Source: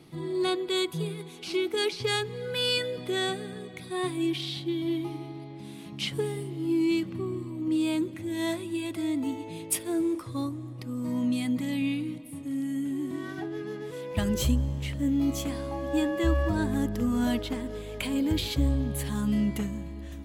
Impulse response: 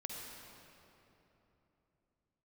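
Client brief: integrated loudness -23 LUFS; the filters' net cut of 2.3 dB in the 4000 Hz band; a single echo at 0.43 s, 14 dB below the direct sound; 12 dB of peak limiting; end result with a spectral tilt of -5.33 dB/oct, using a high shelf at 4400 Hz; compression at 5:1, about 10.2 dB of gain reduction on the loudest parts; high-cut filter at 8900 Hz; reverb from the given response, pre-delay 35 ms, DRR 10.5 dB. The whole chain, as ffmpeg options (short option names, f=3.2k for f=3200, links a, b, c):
-filter_complex "[0:a]lowpass=8.9k,equalizer=f=4k:t=o:g=-7,highshelf=f=4.4k:g=8.5,acompressor=threshold=-31dB:ratio=5,alimiter=level_in=6dB:limit=-24dB:level=0:latency=1,volume=-6dB,aecho=1:1:430:0.2,asplit=2[a][b];[1:a]atrim=start_sample=2205,adelay=35[c];[b][c]afir=irnorm=-1:irlink=0,volume=-9.5dB[d];[a][d]amix=inputs=2:normalize=0,volume=14.5dB"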